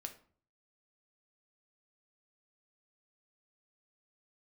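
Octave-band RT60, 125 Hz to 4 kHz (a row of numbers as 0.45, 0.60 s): 0.70, 0.60, 0.50, 0.45, 0.40, 0.30 s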